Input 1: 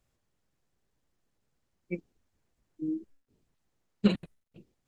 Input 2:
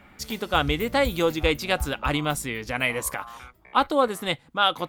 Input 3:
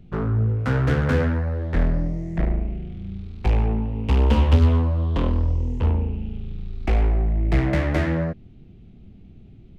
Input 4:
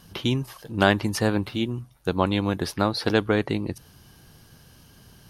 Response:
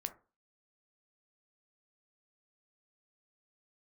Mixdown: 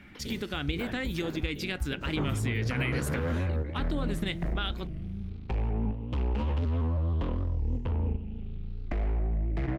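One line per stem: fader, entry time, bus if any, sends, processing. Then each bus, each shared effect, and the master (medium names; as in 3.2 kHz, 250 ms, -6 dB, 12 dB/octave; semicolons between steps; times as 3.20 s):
-5.5 dB, 0.00 s, bus A, no send, peak limiter -21 dBFS, peak gain reduction 11 dB; decay stretcher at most 43 dB/s
+1.5 dB, 0.00 s, bus B, send -8 dB, compression 5:1, threshold -25 dBFS, peak gain reduction 10 dB; high-order bell 780 Hz -11 dB
-1.0 dB, 2.05 s, bus B, no send, compression 2.5:1, threshold -22 dBFS, peak gain reduction 7.5 dB; vibrato with a chosen wave saw up 6.3 Hz, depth 100 cents
-15.5 dB, 0.00 s, bus A, no send, none
bus A: 0.0 dB, whisper effect; peak limiter -30.5 dBFS, peak gain reduction 9 dB
bus B: 0.0 dB, level held to a coarse grid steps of 9 dB; peak limiter -22 dBFS, peak gain reduction 9.5 dB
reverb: on, RT60 0.35 s, pre-delay 7 ms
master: low-pass 3.6 kHz 6 dB/octave; warped record 45 rpm, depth 160 cents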